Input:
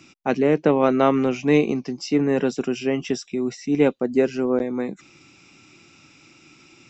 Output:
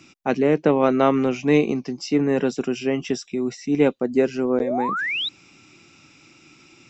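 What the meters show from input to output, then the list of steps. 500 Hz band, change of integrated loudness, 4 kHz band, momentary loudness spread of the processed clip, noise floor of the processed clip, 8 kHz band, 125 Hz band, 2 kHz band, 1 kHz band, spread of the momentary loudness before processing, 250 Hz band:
0.0 dB, 0.0 dB, +6.0 dB, 8 LU, -53 dBFS, n/a, 0.0 dB, +3.5 dB, +1.5 dB, 9 LU, 0.0 dB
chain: painted sound rise, 4.6–5.29, 420–4000 Hz -25 dBFS

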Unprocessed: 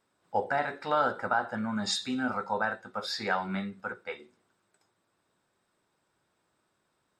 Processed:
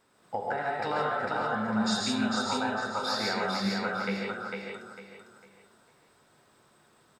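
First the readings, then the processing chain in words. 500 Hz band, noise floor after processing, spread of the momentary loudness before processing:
+1.0 dB, -64 dBFS, 10 LU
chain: compressor 6:1, threshold -39 dBFS, peak gain reduction 16.5 dB; on a send: feedback echo 0.451 s, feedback 31%, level -3.5 dB; on the sum: non-linear reverb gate 0.19 s rising, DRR -1 dB; gain +7.5 dB

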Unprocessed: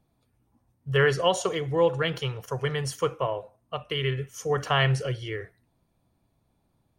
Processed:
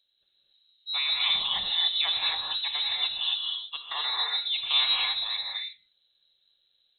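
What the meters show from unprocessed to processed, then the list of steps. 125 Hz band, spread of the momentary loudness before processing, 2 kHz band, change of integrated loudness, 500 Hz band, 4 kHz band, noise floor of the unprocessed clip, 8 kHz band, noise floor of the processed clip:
under -30 dB, 13 LU, -3.5 dB, +1.0 dB, -27.5 dB, +11.0 dB, -72 dBFS, under -40 dB, -72 dBFS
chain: limiter -16 dBFS, peak gain reduction 6.5 dB; non-linear reverb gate 0.3 s rising, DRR -2.5 dB; inverted band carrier 4000 Hz; gain -5 dB

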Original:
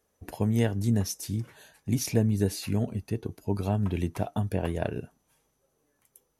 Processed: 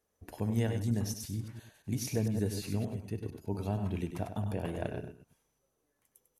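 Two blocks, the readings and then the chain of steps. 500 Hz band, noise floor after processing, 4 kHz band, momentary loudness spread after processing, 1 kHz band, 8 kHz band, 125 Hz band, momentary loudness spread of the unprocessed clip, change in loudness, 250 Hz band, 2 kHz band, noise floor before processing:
-6.0 dB, -80 dBFS, -6.0 dB, 9 LU, -6.0 dB, -6.0 dB, -5.5 dB, 9 LU, -6.0 dB, -6.0 dB, -6.0 dB, -74 dBFS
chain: reverse delay 0.114 s, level -8 dB; echo 98 ms -9.5 dB; gain -7 dB

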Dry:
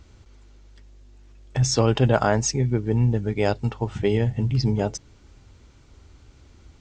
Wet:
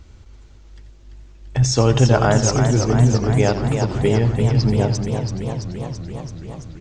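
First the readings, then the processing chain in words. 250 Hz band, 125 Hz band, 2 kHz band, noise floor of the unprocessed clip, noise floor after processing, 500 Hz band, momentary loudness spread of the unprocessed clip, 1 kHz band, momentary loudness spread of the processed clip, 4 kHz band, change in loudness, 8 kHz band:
+5.5 dB, +6.5 dB, +4.0 dB, -53 dBFS, -45 dBFS, +4.5 dB, 8 LU, +4.5 dB, 15 LU, +4.5 dB, +4.5 dB, +4.0 dB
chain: low shelf 98 Hz +5 dB; on a send: feedback echo 86 ms, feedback 38%, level -12.5 dB; on the sum: warbling echo 0.337 s, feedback 73%, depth 104 cents, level -7 dB; gain +2.5 dB

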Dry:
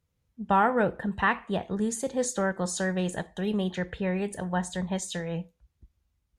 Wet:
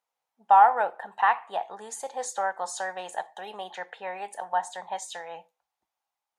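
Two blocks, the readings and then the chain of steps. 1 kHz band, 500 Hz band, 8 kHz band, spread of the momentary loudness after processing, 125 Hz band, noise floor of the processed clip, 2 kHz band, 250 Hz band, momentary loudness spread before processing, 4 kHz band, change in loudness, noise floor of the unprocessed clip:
+7.5 dB, -4.5 dB, -3.5 dB, 19 LU, under -25 dB, under -85 dBFS, -1.5 dB, -24.5 dB, 8 LU, -3.0 dB, +2.0 dB, -77 dBFS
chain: resonant high-pass 800 Hz, resonance Q 4.9; gain -3.5 dB

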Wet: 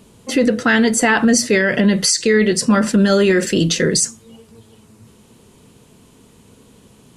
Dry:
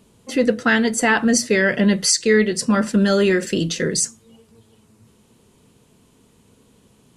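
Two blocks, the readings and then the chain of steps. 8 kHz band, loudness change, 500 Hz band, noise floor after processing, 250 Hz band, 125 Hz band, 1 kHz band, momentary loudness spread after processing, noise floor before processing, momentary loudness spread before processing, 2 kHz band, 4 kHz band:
+3.0 dB, +3.0 dB, +2.5 dB, -50 dBFS, +3.5 dB, +4.0 dB, +2.5 dB, 4 LU, -57 dBFS, 6 LU, +2.0 dB, +3.5 dB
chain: limiter -13 dBFS, peak gain reduction 8 dB; gain +7 dB

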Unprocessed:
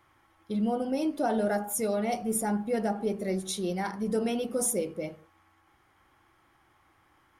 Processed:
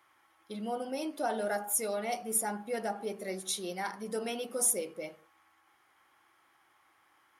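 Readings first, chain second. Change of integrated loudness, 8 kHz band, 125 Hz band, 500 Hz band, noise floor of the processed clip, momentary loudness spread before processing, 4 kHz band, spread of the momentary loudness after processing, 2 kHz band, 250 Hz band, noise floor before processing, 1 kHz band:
-3.5 dB, +1.5 dB, -12.5 dB, -5.5 dB, -68 dBFS, 4 LU, 0.0 dB, 10 LU, -1.0 dB, -10.5 dB, -66 dBFS, -3.0 dB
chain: HPF 780 Hz 6 dB/oct; bell 11000 Hz +4 dB 0.26 oct

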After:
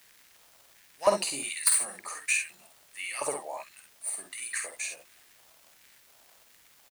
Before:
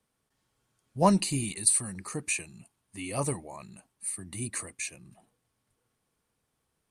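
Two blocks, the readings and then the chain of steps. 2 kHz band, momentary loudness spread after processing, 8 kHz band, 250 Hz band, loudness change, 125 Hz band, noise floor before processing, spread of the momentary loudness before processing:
+6.0 dB, 17 LU, +0.5 dB, -16.0 dB, -0.5 dB, -21.5 dB, -80 dBFS, 21 LU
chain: tracing distortion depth 0.023 ms; crackle 190/s -46 dBFS; LFO high-pass square 1.4 Hz 620–1800 Hz; early reflections 50 ms -6.5 dB, 64 ms -9.5 dB; added noise white -61 dBFS

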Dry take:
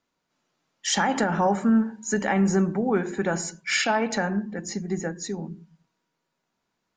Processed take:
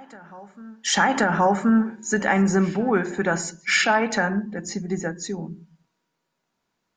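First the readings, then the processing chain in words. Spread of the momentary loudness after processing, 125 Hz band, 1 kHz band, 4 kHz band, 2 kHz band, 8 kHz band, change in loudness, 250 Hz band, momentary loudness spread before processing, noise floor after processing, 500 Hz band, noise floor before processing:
12 LU, +1.5 dB, +4.0 dB, +2.5 dB, +5.5 dB, +1.5 dB, +3.0 dB, +1.5 dB, 11 LU, -78 dBFS, +2.0 dB, -79 dBFS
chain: dynamic EQ 1500 Hz, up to +5 dB, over -36 dBFS, Q 0.97; reverse echo 1.077 s -23.5 dB; gain +1.5 dB

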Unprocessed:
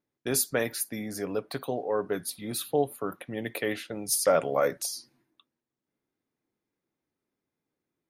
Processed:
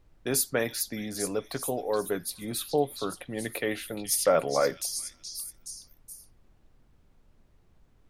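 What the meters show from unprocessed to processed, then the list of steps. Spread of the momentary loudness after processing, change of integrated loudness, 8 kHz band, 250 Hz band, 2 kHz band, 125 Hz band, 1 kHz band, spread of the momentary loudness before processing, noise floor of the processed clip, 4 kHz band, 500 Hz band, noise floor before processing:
17 LU, 0.0 dB, +1.0 dB, 0.0 dB, 0.0 dB, 0.0 dB, 0.0 dB, 11 LU, -63 dBFS, +2.0 dB, 0.0 dB, under -85 dBFS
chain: wow and flutter 16 cents; delay with a stepping band-pass 0.422 s, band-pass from 4500 Hz, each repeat 0.7 oct, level -3 dB; added noise brown -59 dBFS

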